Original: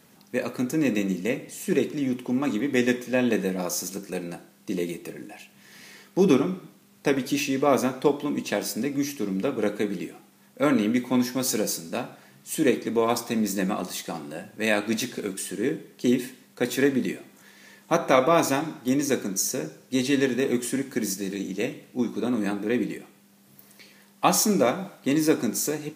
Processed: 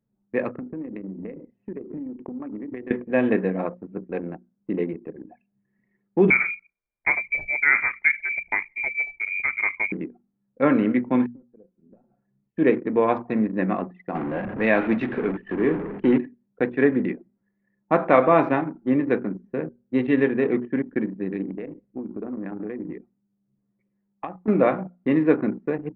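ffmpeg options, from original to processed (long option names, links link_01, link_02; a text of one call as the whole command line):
ffmpeg -i in.wav -filter_complex "[0:a]asettb=1/sr,asplit=3[link_01][link_02][link_03];[link_01]atrim=end=0.494[link_04];[link_02]atrim=start=0.49:end=2.91,asetpts=PTS-STARTPTS,afade=type=in:duration=0.004:curve=qsin,afade=type=out:start_time=2.416:duration=0.004:curve=qsin,acompressor=threshold=-31dB:ratio=16:attack=3.2:release=140:knee=1:detection=peak[link_05];[link_03]atrim=start=2.906[link_06];[link_04][link_05]acrossfade=duration=0.004:curve1=hsin:curve2=qsin[link_07];[link_07][link_06]acrossfade=duration=0.004:curve1=qsin:curve2=hsin,asettb=1/sr,asplit=3[link_08][link_09][link_10];[link_08]atrim=end=6.304[link_11];[link_09]atrim=start=6.3:end=9.92,asetpts=PTS-STARTPTS,afade=type=in:duration=0.004:curve=qsin,afade=type=out:start_time=3.616:duration=0.004:curve=qsin,lowpass=frequency=2200:width_type=q:width=0.5098,lowpass=frequency=2200:width_type=q:width=0.6013,lowpass=frequency=2200:width_type=q:width=0.9,lowpass=frequency=2200:width_type=q:width=2.563,afreqshift=-2600[link_12];[link_10]atrim=start=9.916[link_13];[link_11][link_12]acrossfade=duration=0.004:curve1=hsin:curve2=qsin[link_14];[link_14][link_13]acrossfade=duration=0.004:curve1=qsin:curve2=hsin,asettb=1/sr,asplit=3[link_15][link_16][link_17];[link_15]atrim=end=11.264[link_18];[link_16]atrim=start=11.26:end=12.57,asetpts=PTS-STARTPTS,afade=type=in:duration=0.004:curve=qsin,afade=type=out:start_time=1.306:duration=0.004:curve=qsin,acompressor=threshold=-42dB:ratio=5:attack=3.2:release=140:knee=1:detection=peak[link_19];[link_17]atrim=start=12.566[link_20];[link_18][link_19]acrossfade=duration=0.004:curve1=hsin:curve2=qsin[link_21];[link_21][link_20]acrossfade=duration=0.004:curve1=qsin:curve2=hsin,asettb=1/sr,asplit=3[link_22][link_23][link_24];[link_22]atrim=end=14.154[link_25];[link_23]atrim=start=14.15:end=16.18,asetpts=PTS-STARTPTS,afade=type=in:duration=0.004:curve=qsin,afade=type=out:start_time=2.026:duration=0.004:curve=qsin,aeval=exprs='val(0)+0.5*0.0376*sgn(val(0))':channel_layout=same[link_26];[link_24]atrim=start=16.176[link_27];[link_25][link_26]acrossfade=duration=0.004:curve1=hsin:curve2=qsin[link_28];[link_28][link_27]acrossfade=duration=0.004:curve1=qsin:curve2=hsin,asettb=1/sr,asplit=3[link_29][link_30][link_31];[link_29]atrim=end=21.504[link_32];[link_30]atrim=start=21.5:end=24.48,asetpts=PTS-STARTPTS,afade=type=in:duration=0.004:curve=qsin,afade=type=out:start_time=2.976:duration=0.004:curve=qsin,acompressor=threshold=-29dB:ratio=20:attack=3.2:release=140:knee=1:detection=peak[link_33];[link_31]atrim=start=24.476[link_34];[link_32][link_33]acrossfade=duration=0.004:curve1=hsin:curve2=qsin[link_35];[link_35][link_34]acrossfade=duration=0.004:curve1=qsin:curve2=hsin,lowpass=frequency=2300:width=0.5412,lowpass=frequency=2300:width=1.3066,anlmdn=6.31,bandreject=frequency=60:width_type=h:width=6,bandreject=frequency=120:width_type=h:width=6,bandreject=frequency=180:width_type=h:width=6,bandreject=frequency=240:width_type=h:width=6,volume=3dB" out.wav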